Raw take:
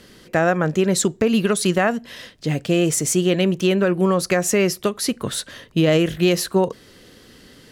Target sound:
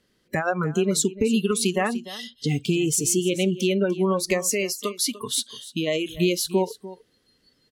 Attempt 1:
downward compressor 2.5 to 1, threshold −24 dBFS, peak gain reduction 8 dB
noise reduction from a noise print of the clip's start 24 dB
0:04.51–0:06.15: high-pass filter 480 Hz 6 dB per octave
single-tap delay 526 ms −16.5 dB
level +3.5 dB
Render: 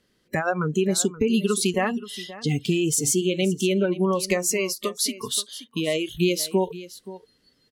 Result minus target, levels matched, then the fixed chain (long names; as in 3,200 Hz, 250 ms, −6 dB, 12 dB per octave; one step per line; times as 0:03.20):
echo 230 ms late
downward compressor 2.5 to 1, threshold −24 dBFS, peak gain reduction 8 dB
noise reduction from a noise print of the clip's start 24 dB
0:04.51–0:06.15: high-pass filter 480 Hz 6 dB per octave
single-tap delay 296 ms −16.5 dB
level +3.5 dB